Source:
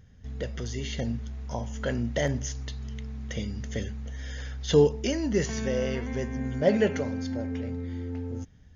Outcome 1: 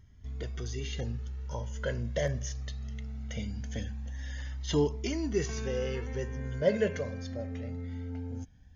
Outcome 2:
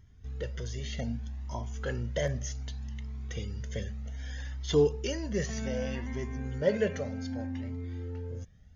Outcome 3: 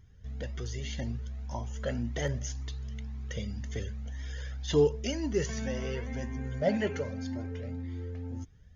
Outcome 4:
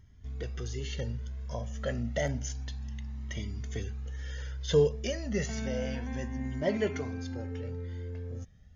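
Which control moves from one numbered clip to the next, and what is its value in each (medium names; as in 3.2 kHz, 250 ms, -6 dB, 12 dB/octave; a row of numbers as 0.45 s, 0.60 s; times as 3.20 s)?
Shepard-style flanger, rate: 0.21 Hz, 0.65 Hz, 1.9 Hz, 0.3 Hz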